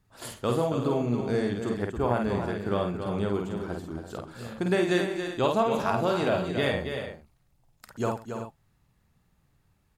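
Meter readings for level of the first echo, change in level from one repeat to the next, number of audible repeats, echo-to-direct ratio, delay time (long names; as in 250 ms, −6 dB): −4.0 dB, repeats not evenly spaced, 5, −1.5 dB, 50 ms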